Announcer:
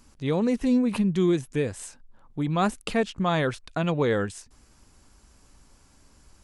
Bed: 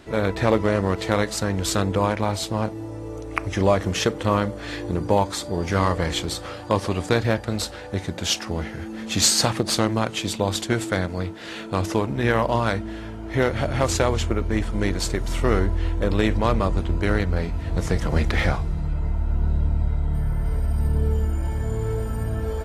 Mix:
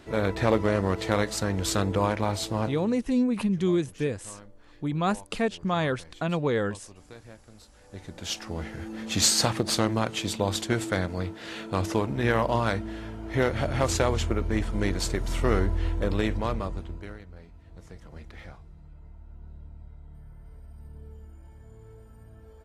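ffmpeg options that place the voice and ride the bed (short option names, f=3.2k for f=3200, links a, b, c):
-filter_complex "[0:a]adelay=2450,volume=-2dB[a];[1:a]volume=19.5dB,afade=t=out:st=2.64:d=0.39:silence=0.0707946,afade=t=in:st=7.72:d=1.24:silence=0.0707946,afade=t=out:st=15.89:d=1.29:silence=0.1[b];[a][b]amix=inputs=2:normalize=0"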